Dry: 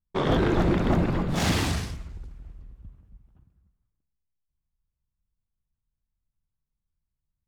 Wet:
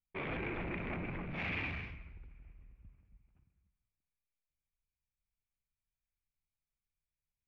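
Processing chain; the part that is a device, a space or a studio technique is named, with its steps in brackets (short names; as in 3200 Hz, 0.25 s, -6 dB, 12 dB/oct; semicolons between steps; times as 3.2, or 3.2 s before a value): overdriven synthesiser ladder filter (soft clip -25 dBFS, distortion -10 dB; ladder low-pass 2500 Hz, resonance 80%)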